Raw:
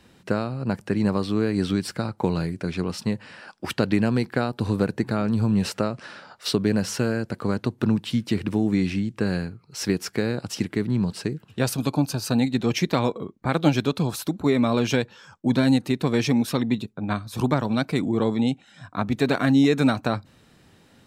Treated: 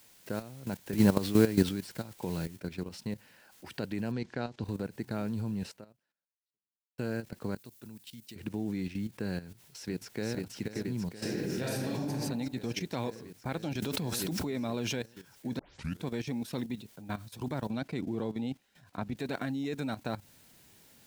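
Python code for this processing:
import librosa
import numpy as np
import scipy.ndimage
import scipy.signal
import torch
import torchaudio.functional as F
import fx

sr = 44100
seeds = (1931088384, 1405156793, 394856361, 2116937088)

y = fx.noise_floor_step(x, sr, seeds[0], at_s=2.56, before_db=-41, after_db=-51, tilt_db=0.0)
y = fx.lowpass(y, sr, hz=6600.0, slope=24, at=(4.11, 4.63), fade=0.02)
y = fx.pre_emphasis(y, sr, coefficient=0.8, at=(7.55, 8.36))
y = fx.echo_throw(y, sr, start_s=9.42, length_s=0.94, ms=480, feedback_pct=85, wet_db=-5.0)
y = fx.reverb_throw(y, sr, start_s=11.15, length_s=0.94, rt60_s=1.3, drr_db=-6.0)
y = fx.pre_swell(y, sr, db_per_s=25.0, at=(13.82, 15.03))
y = fx.high_shelf(y, sr, hz=6800.0, db=-11.0, at=(17.7, 19.17))
y = fx.edit(y, sr, fx.clip_gain(start_s=0.93, length_s=0.76, db=9.0),
    fx.fade_out_span(start_s=5.63, length_s=1.35, curve='exp'),
    fx.tape_start(start_s=15.59, length_s=0.46), tone=tone)
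y = fx.peak_eq(y, sr, hz=1200.0, db=-8.0, octaves=0.22)
y = fx.level_steps(y, sr, step_db=13)
y = y * 10.0 ** (-7.5 / 20.0)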